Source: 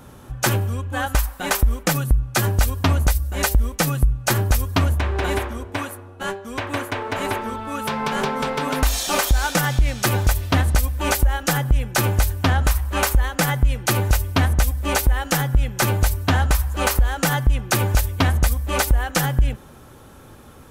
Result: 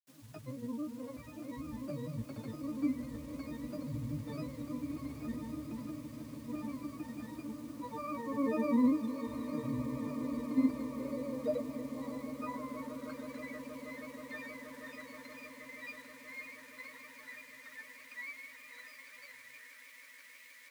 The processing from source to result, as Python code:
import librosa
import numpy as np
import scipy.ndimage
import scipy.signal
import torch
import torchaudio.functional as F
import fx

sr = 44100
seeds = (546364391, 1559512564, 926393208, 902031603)

y = fx.octave_resonator(x, sr, note='C', decay_s=0.66)
y = fx.dmg_noise_colour(y, sr, seeds[0], colour='white', level_db=-58.0)
y = fx.filter_sweep_highpass(y, sr, from_hz=220.0, to_hz=1900.0, start_s=10.16, end_s=13.51, q=4.9)
y = fx.granulator(y, sr, seeds[1], grain_ms=100.0, per_s=20.0, spray_ms=100.0, spread_st=3)
y = fx.echo_swell(y, sr, ms=159, loudest=8, wet_db=-17)
y = F.gain(torch.from_numpy(y), -3.0).numpy()